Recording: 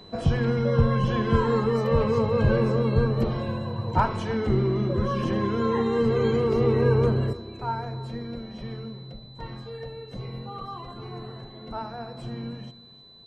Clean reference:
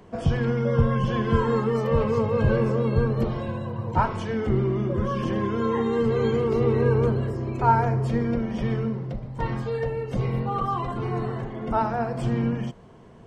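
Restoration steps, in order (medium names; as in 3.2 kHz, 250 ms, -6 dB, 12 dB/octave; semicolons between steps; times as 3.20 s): clip repair -9.5 dBFS; band-stop 4 kHz, Q 30; inverse comb 308 ms -18.5 dB; trim 0 dB, from 7.33 s +10.5 dB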